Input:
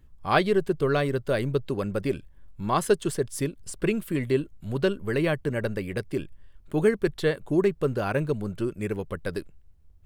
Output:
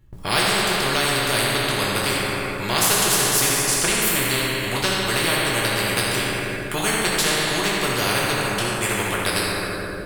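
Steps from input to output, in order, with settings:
noise gate with hold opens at −44 dBFS
convolution reverb RT60 2.0 s, pre-delay 4 ms, DRR −4.5 dB
every bin compressed towards the loudest bin 4 to 1

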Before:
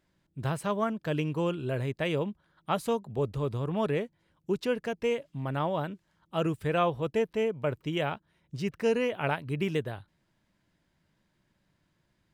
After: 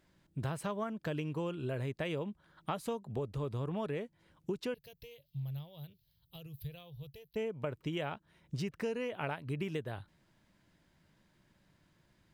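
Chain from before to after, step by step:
downward compressor 6 to 1, threshold −38 dBFS, peak gain reduction 15.5 dB
0:04.74–0:07.36: drawn EQ curve 140 Hz 0 dB, 220 Hz −28 dB, 470 Hz −17 dB, 920 Hz −23 dB, 1,400 Hz −27 dB, 4,200 Hz +2 dB, 8,000 Hz −18 dB, 13,000 Hz +14 dB
level +3.5 dB

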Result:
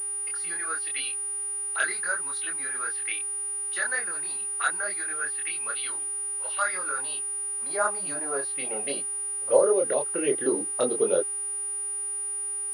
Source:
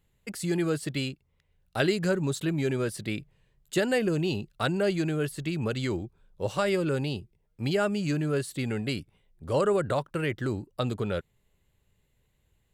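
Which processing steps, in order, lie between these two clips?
0:09.56–0:10.28: downward compressor 6 to 1, threshold −27 dBFS, peak gain reduction 6.5 dB
phaser swept by the level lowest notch 180 Hz, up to 2,900 Hz, full sweep at −24.5 dBFS
0:07.19–0:07.70: phaser with its sweep stopped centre 570 Hz, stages 8
multi-voice chorus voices 4, 0.79 Hz, delay 25 ms, depth 3.7 ms
high-pass filter sweep 1,500 Hz → 420 Hz, 0:06.52–0:09.96
hum with harmonics 400 Hz, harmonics 14, −59 dBFS −5 dB per octave
high-frequency loss of the air 67 metres
switching amplifier with a slow clock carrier 9,600 Hz
level +7 dB

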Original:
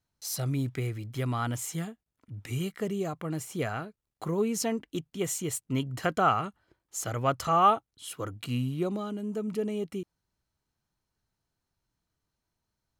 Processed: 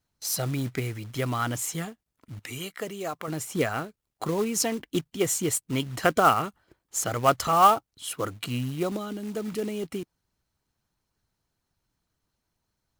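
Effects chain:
harmonic and percussive parts rebalanced percussive +7 dB
0:02.39–0:03.28: low-shelf EQ 350 Hz −11 dB
floating-point word with a short mantissa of 2 bits

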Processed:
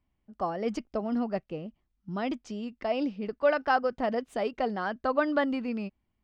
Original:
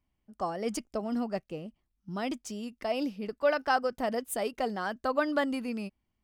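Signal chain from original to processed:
high-frequency loss of the air 170 metres
level +2.5 dB

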